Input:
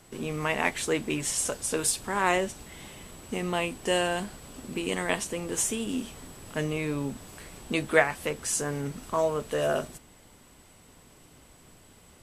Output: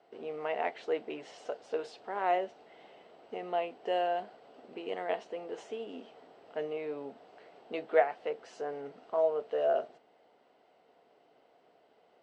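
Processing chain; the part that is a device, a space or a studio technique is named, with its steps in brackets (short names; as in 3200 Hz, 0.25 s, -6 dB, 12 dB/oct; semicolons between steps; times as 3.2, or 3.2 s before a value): phone earpiece (speaker cabinet 420–3600 Hz, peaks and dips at 450 Hz +7 dB, 700 Hz +10 dB, 1100 Hz -6 dB, 1700 Hz -5 dB, 2400 Hz -7 dB, 3500 Hz -7 dB); gain -7 dB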